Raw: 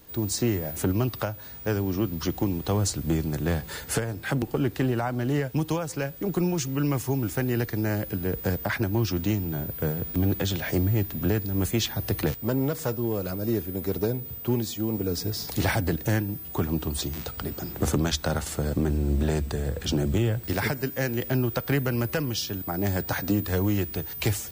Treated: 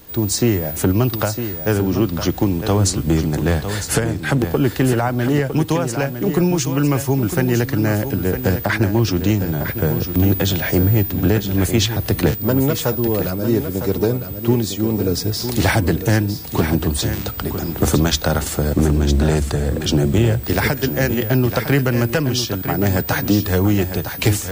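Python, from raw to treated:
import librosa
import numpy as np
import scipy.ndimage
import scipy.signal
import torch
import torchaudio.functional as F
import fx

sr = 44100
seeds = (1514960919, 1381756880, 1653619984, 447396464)

y = x + 10.0 ** (-9.0 / 20.0) * np.pad(x, (int(956 * sr / 1000.0), 0))[:len(x)]
y = F.gain(torch.from_numpy(y), 8.5).numpy()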